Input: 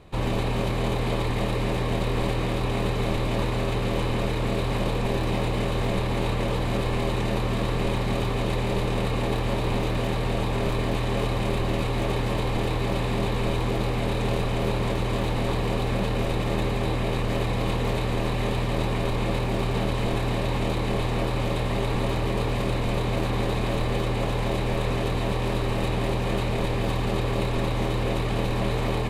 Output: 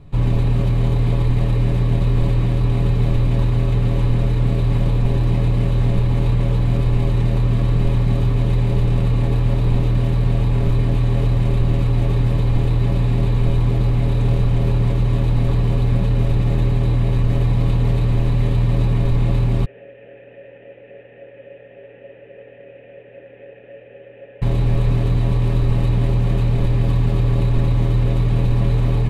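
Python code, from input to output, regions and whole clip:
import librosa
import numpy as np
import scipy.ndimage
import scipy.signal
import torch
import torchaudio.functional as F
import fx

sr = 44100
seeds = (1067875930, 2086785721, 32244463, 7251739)

y = fx.chain(x, sr, fx.cvsd(bps=16000),
    fx.vowel_filter(vowel='e'),
    fx.low_shelf(hz=190.0, db=-11.5), at=(19.65, 24.42))
y = fx.bass_treble(y, sr, bass_db=15, treble_db=-2)
y = y + 0.46 * np.pad(y, (int(7.1 * sr / 1000.0), 0))[:len(y)]
y = F.gain(torch.from_numpy(y), -4.5).numpy()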